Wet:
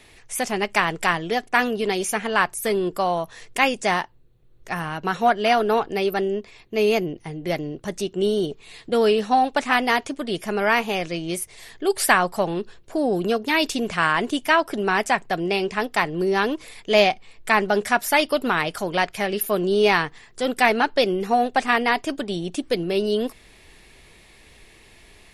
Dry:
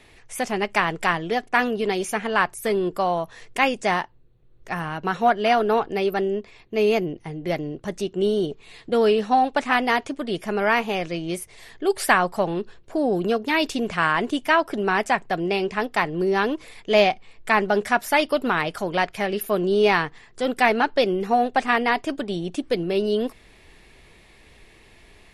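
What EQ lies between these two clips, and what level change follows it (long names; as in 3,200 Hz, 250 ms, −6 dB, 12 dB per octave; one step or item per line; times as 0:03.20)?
high-shelf EQ 4,100 Hz +7 dB
0.0 dB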